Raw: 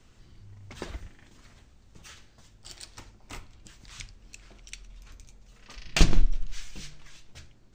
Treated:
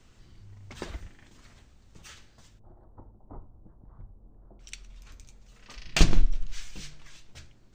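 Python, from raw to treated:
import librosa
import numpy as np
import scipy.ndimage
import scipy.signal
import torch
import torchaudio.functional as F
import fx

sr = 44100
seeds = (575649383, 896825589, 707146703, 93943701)

y = fx.cheby2_lowpass(x, sr, hz=2400.0, order=4, stop_db=50, at=(2.58, 4.59), fade=0.02)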